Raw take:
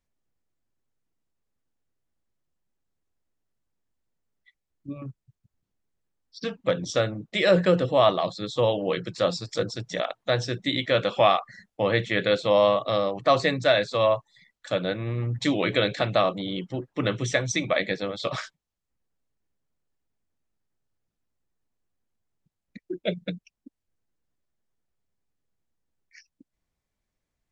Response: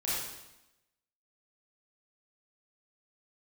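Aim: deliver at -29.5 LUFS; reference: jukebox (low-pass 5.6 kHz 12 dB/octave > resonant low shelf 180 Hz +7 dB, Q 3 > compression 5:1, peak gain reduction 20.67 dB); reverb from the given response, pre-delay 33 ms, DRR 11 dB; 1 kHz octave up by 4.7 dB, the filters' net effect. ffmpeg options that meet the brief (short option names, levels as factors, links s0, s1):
-filter_complex "[0:a]equalizer=f=1000:t=o:g=6.5,asplit=2[s0][s1];[1:a]atrim=start_sample=2205,adelay=33[s2];[s1][s2]afir=irnorm=-1:irlink=0,volume=0.141[s3];[s0][s3]amix=inputs=2:normalize=0,lowpass=5600,lowshelf=f=180:t=q:w=3:g=7,acompressor=threshold=0.02:ratio=5,volume=2.37"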